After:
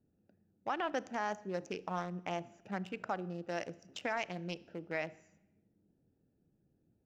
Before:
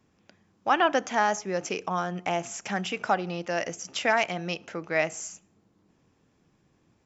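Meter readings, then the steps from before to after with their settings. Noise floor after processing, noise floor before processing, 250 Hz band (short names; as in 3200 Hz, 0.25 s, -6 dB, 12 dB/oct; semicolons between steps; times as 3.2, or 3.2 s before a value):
-77 dBFS, -68 dBFS, -8.5 dB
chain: Wiener smoothing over 41 samples; limiter -17.5 dBFS, peak gain reduction 7.5 dB; Schroeder reverb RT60 0.9 s, combs from 26 ms, DRR 19.5 dB; gain -7 dB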